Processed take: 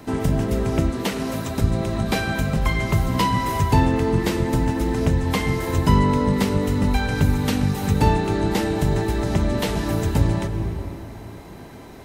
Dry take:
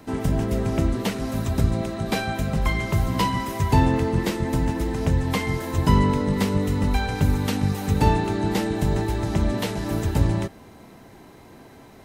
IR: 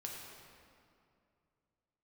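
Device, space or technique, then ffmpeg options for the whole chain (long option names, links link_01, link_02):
ducked reverb: -filter_complex "[0:a]asplit=3[link_01][link_02][link_03];[1:a]atrim=start_sample=2205[link_04];[link_02][link_04]afir=irnorm=-1:irlink=0[link_05];[link_03]apad=whole_len=531228[link_06];[link_05][link_06]sidechaincompress=threshold=-26dB:ratio=8:attack=16:release=339,volume=2dB[link_07];[link_01][link_07]amix=inputs=2:normalize=0,asettb=1/sr,asplit=3[link_08][link_09][link_10];[link_08]atrim=end=0.904[link_11];[link_09]atrim=start=0.9:end=1.62,asetpts=PTS-STARTPTS,afade=type=in:duration=0.004:curve=qsin,afade=type=out:start_time=0.716:duration=0.004:curve=qsin,highpass=frequency=210:poles=1[link_12];[link_10]atrim=start=1.616[link_13];[link_11][link_12]acrossfade=duration=0.004:curve1=hsin:curve2=qsin[link_14];[link_14][link_13]acrossfade=duration=0.004:curve1=qsin:curve2=hsin"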